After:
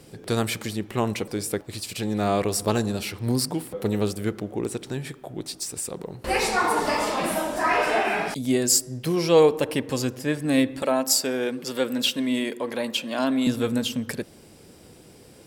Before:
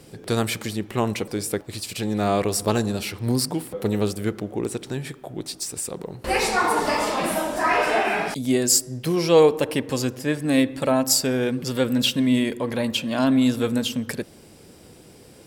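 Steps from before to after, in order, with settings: 10.82–13.47 s: high-pass 280 Hz 12 dB/octave; trim -1.5 dB

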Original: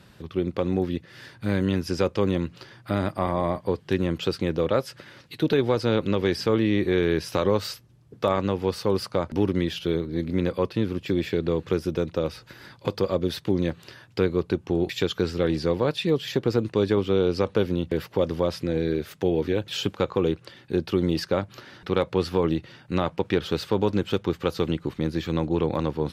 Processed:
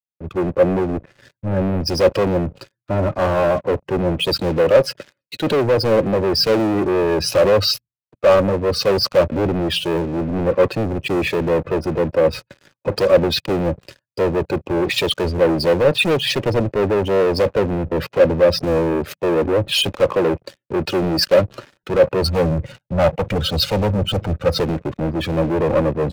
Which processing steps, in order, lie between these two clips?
band-stop 3.5 kHz, Q 24; expander -40 dBFS; spectral gate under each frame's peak -15 dB strong; 22.23–24.60 s: comb 1.4 ms, depth 85%; waveshaping leveller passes 5; small resonant body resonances 560/2500 Hz, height 8 dB, ringing for 30 ms; three bands expanded up and down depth 70%; trim -4 dB

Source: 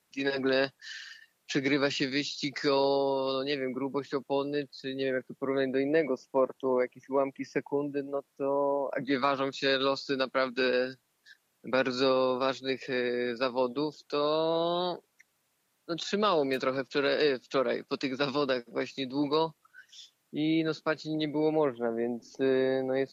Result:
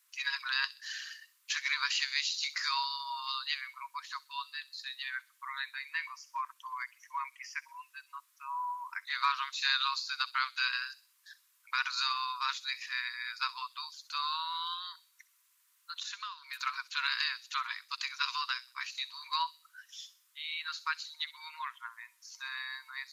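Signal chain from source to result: brick-wall FIR high-pass 930 Hz; 14.73–16.61 s: compression 16:1, threshold -39 dBFS, peak gain reduction 15.5 dB; treble shelf 6.7 kHz +9 dB; feedback echo behind a high-pass 64 ms, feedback 39%, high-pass 3.9 kHz, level -12 dB

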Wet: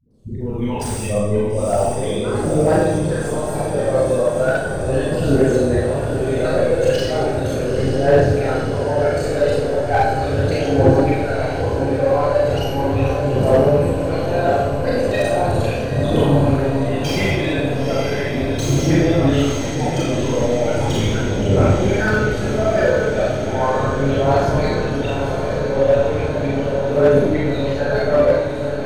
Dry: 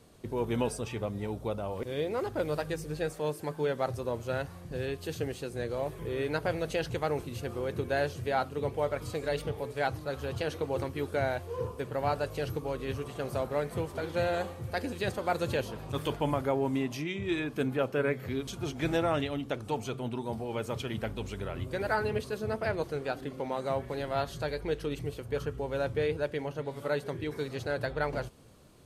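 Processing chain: resonances exaggerated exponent 1.5; peaking EQ 7 kHz +7 dB 1.3 oct; level held to a coarse grid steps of 19 dB; transient shaper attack -5 dB, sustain +1 dB; level rider gain up to 6.5 dB; phase dispersion highs, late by 108 ms, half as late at 410 Hz; phaser 0.37 Hz, delay 2 ms, feedback 69%; echo that smears into a reverb 926 ms, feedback 77%, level -8 dB; Schroeder reverb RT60 0.9 s, combs from 29 ms, DRR -6.5 dB; slew-rate limiter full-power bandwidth 110 Hz; trim +6 dB

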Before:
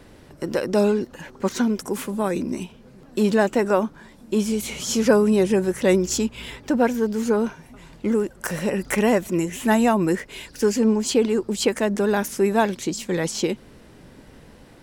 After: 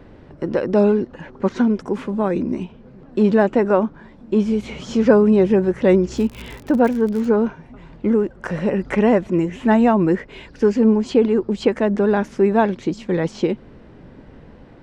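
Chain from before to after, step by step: tape spacing loss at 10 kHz 30 dB; 6.16–7.28 s: crackle 140 per s -> 42 per s -30 dBFS; trim +5 dB

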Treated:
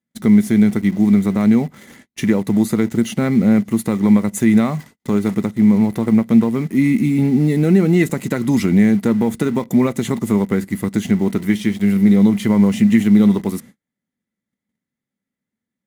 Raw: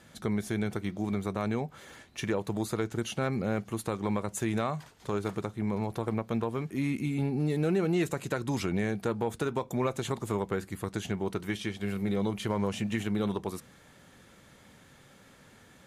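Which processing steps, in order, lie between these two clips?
gate -50 dBFS, range -37 dB; treble shelf 9.1 kHz +10.5 dB; in parallel at -3 dB: bit crusher 7-bit; on the sum: small resonant body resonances 220/2000 Hz, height 16 dB, ringing for 35 ms; trim +1 dB

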